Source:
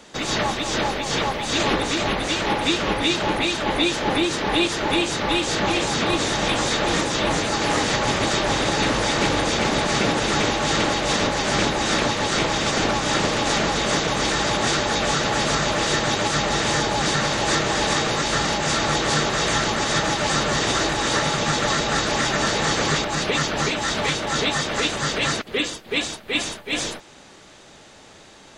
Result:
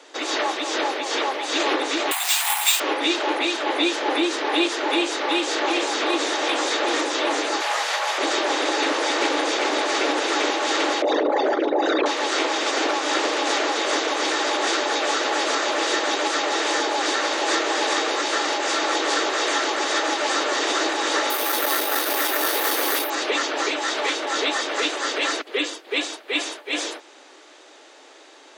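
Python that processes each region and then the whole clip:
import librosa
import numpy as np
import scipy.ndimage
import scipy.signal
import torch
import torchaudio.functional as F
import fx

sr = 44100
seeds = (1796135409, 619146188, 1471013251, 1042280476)

y = fx.chain(x, sr, fx.cheby_ripple_highpass(hz=690.0, ripple_db=3),
    fx.high_shelf(hz=4100.0, db=8.5),
    fx.resample_bad(factor=4, down='none', up='zero_stuff'), at=(2.11, 2.8))
y = fx.chain(y, sr, fx.cvsd(bps=64000),
    fx.highpass(hz=610.0, slope=24), at=(7.6, 8.18))
y = fx.chain(y, sr, fx.envelope_sharpen(power=3.0),
    fx.env_flatten(amount_pct=100), at=(11.02, 12.06))
y = fx.chain(y, sr, fx.resample_bad(factor=3, down='filtered', up='zero_stuff'),
    fx.transformer_sat(knee_hz=1400.0), at=(21.3, 23.1))
y = scipy.signal.sosfilt(scipy.signal.butter(12, 280.0, 'highpass', fs=sr, output='sos'), y)
y = fx.high_shelf(y, sr, hz=10000.0, db=-10.0)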